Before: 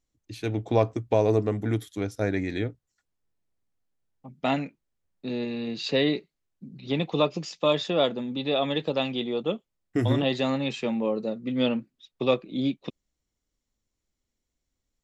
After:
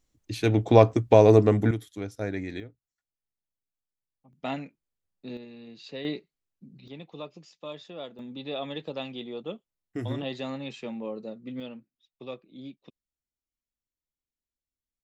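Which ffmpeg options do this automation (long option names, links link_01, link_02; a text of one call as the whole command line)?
ffmpeg -i in.wav -af "asetnsamples=nb_out_samples=441:pad=0,asendcmd='1.71 volume volume -5dB;2.6 volume volume -14.5dB;4.33 volume volume -7dB;5.37 volume volume -14.5dB;6.05 volume volume -6.5dB;6.88 volume volume -16.5dB;8.19 volume volume -8.5dB;11.6 volume volume -16dB',volume=6dB" out.wav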